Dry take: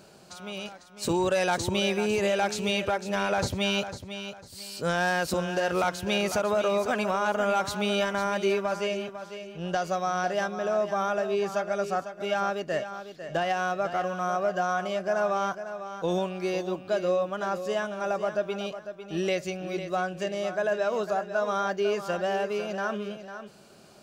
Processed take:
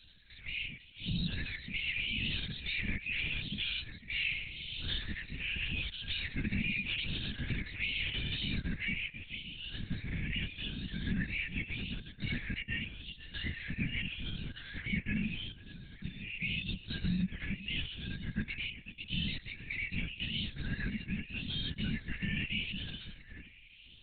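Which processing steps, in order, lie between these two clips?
moving spectral ripple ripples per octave 0.62, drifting +0.83 Hz, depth 17 dB; spectral gate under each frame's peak -10 dB weak; elliptic band-stop 230–2100 Hz, stop band 40 dB; limiter -29.5 dBFS, peak gain reduction 10 dB; 4.04–4.98 flutter echo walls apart 4.9 m, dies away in 0.98 s; 15.35–16.34 compressor, threshold -43 dBFS, peak gain reduction 6.5 dB; LPC vocoder at 8 kHz whisper; gain +5 dB

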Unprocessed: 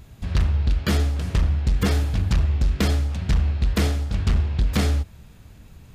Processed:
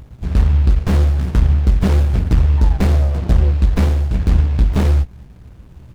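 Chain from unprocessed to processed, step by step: painted sound fall, 2.57–3.52, 410–940 Hz -36 dBFS; doubler 16 ms -6 dB; running maximum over 65 samples; gain +6 dB

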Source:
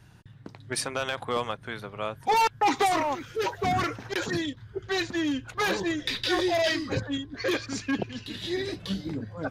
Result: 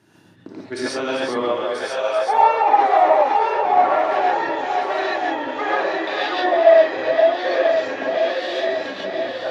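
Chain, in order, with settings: regenerating reverse delay 0.491 s, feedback 73%, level -5 dB; low shelf 170 Hz +7.5 dB; treble ducked by the level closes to 1900 Hz, closed at -20.5 dBFS; non-linear reverb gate 0.16 s rising, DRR -6.5 dB; high-pass sweep 300 Hz -> 600 Hz, 1.43–2.04; gain -2.5 dB

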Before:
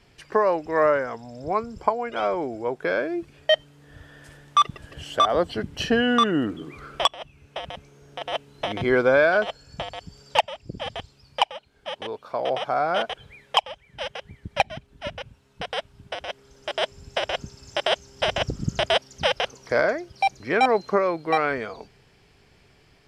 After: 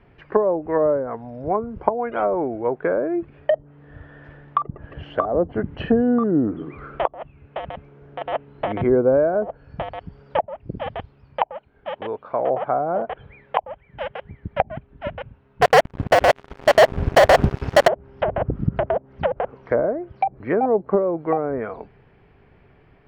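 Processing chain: treble ducked by the level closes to 560 Hz, closed at -18.5 dBFS; Bessel low-pass 1600 Hz, order 4; 15.62–17.88 sample leveller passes 5; gain +5 dB

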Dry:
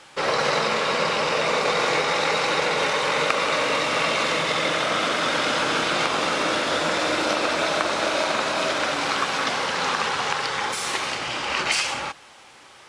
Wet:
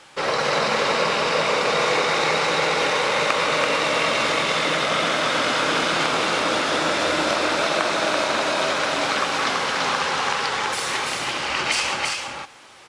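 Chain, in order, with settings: echo 0.334 s -3.5 dB

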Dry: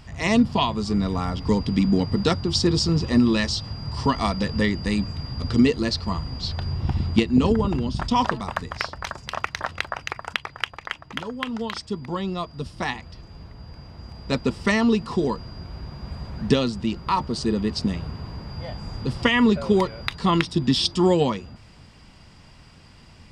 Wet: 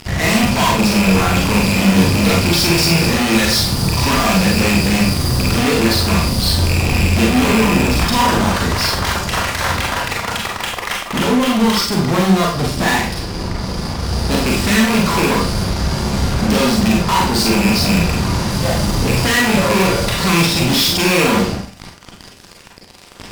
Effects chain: rattling part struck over -23 dBFS, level -9 dBFS; fuzz box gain 42 dB, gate -42 dBFS; Schroeder reverb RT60 0.45 s, combs from 32 ms, DRR -2 dB; gain -3.5 dB

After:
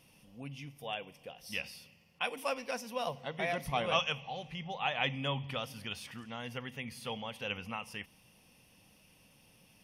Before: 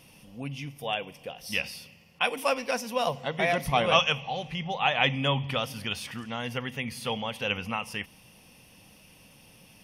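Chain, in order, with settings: 2.89–3.55 notch 7200 Hz, Q 6.1; gain -8.5 dB

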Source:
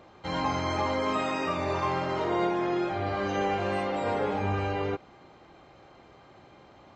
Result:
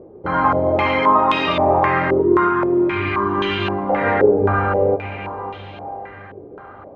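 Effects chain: diffused feedback echo 0.567 s, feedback 48%, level -11 dB; spectral gain 2.21–3.9, 410–900 Hz -15 dB; stepped low-pass 3.8 Hz 430–3300 Hz; gain +8 dB

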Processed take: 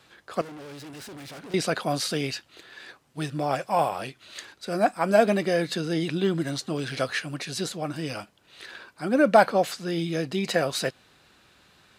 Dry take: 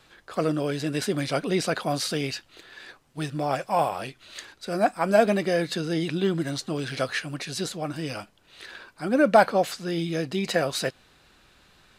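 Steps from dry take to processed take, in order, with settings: 0.41–1.54 tube stage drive 40 dB, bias 0.65; HPF 74 Hz

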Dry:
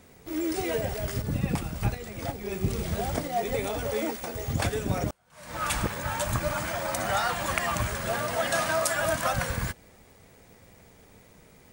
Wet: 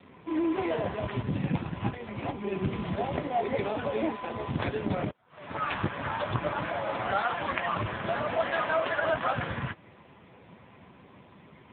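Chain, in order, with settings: notch 450 Hz, Q 12; in parallel at -0.5 dB: compressor 16:1, threshold -34 dBFS, peak gain reduction 14.5 dB; on the sum: careless resampling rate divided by 6×, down none, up hold; short-mantissa float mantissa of 2-bit; AMR-NB 5.9 kbps 8000 Hz

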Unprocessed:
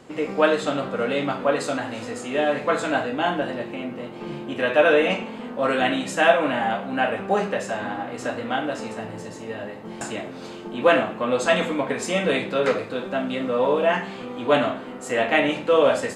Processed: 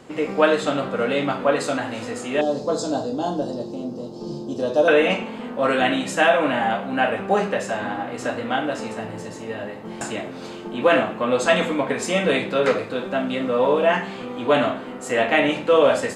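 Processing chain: 2.41–4.88 EQ curve 450 Hz 0 dB, 1000 Hz -7 dB, 2200 Hz -28 dB, 5100 Hz +12 dB, 9500 Hz -3 dB; maximiser +6.5 dB; gain -4.5 dB

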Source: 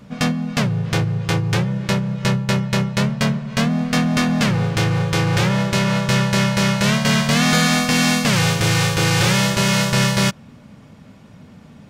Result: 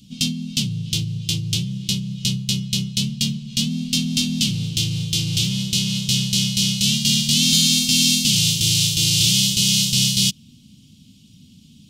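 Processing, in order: EQ curve 270 Hz 0 dB, 590 Hz -26 dB, 1800 Hz -25 dB, 3000 Hz +11 dB; gain -5 dB

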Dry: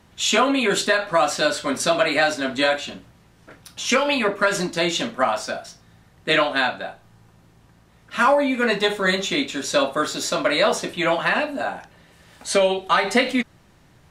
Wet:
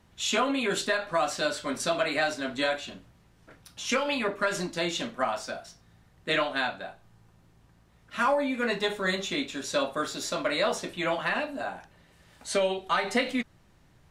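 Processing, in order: low shelf 64 Hz +7 dB; gain -8 dB

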